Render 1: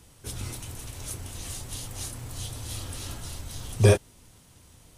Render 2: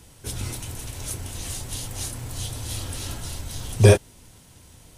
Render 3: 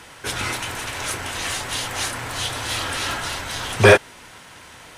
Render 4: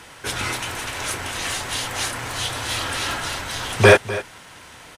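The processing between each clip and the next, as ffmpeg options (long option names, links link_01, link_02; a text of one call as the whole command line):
ffmpeg -i in.wav -af "bandreject=frequency=1200:width=15,volume=4.5dB" out.wav
ffmpeg -i in.wav -filter_complex "[0:a]asplit=2[link_01][link_02];[link_02]highpass=frequency=720:poles=1,volume=20dB,asoftclip=type=tanh:threshold=-1dB[link_03];[link_01][link_03]amix=inputs=2:normalize=0,lowpass=frequency=2700:poles=1,volume=-6dB,equalizer=frequency=1600:width=0.8:gain=8.5,volume=-2dB" out.wav
ffmpeg -i in.wav -af "aecho=1:1:250:0.168" out.wav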